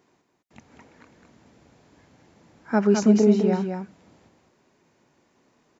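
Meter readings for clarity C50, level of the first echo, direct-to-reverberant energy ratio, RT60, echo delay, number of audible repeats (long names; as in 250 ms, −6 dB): no reverb audible, −5.5 dB, no reverb audible, no reverb audible, 209 ms, 1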